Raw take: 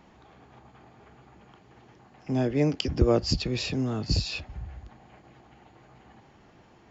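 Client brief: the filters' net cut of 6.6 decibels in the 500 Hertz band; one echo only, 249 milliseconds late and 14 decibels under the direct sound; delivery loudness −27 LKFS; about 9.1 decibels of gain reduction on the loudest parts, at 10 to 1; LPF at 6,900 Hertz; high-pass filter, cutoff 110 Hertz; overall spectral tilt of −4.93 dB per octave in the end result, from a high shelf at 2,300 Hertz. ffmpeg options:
ffmpeg -i in.wav -af "highpass=110,lowpass=6900,equalizer=frequency=500:width_type=o:gain=-8.5,highshelf=frequency=2300:gain=-3.5,acompressor=threshold=-29dB:ratio=10,aecho=1:1:249:0.2,volume=8dB" out.wav

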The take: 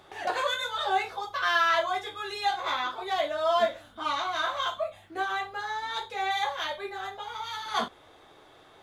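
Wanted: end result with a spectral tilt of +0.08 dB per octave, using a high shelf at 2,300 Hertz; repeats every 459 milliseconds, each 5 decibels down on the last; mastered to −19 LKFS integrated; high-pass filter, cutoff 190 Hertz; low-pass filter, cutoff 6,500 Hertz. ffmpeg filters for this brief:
ffmpeg -i in.wav -af "highpass=190,lowpass=6500,highshelf=frequency=2300:gain=6.5,aecho=1:1:459|918|1377|1836|2295|2754|3213:0.562|0.315|0.176|0.0988|0.0553|0.031|0.0173,volume=7dB" out.wav

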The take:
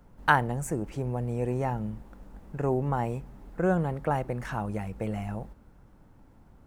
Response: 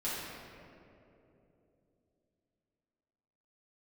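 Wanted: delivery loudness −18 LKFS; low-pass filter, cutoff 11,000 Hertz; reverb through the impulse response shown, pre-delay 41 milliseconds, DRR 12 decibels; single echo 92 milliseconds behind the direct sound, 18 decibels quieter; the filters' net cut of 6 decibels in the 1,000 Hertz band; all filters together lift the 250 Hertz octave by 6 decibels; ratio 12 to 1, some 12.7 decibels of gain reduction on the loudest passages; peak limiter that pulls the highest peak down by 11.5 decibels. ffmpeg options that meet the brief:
-filter_complex "[0:a]lowpass=11000,equalizer=frequency=250:width_type=o:gain=8.5,equalizer=frequency=1000:width_type=o:gain=-8.5,acompressor=threshold=-31dB:ratio=12,alimiter=level_in=6.5dB:limit=-24dB:level=0:latency=1,volume=-6.5dB,aecho=1:1:92:0.126,asplit=2[link_01][link_02];[1:a]atrim=start_sample=2205,adelay=41[link_03];[link_02][link_03]afir=irnorm=-1:irlink=0,volume=-17.5dB[link_04];[link_01][link_04]amix=inputs=2:normalize=0,volume=22dB"

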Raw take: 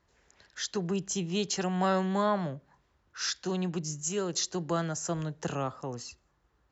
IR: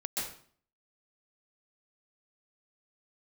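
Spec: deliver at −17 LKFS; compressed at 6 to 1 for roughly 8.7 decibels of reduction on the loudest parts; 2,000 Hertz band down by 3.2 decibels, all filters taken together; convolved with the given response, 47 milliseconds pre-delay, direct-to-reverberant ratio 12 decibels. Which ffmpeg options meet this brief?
-filter_complex "[0:a]equalizer=frequency=2000:width_type=o:gain=-4.5,acompressor=threshold=-33dB:ratio=6,asplit=2[link_01][link_02];[1:a]atrim=start_sample=2205,adelay=47[link_03];[link_02][link_03]afir=irnorm=-1:irlink=0,volume=-16dB[link_04];[link_01][link_04]amix=inputs=2:normalize=0,volume=20.5dB"

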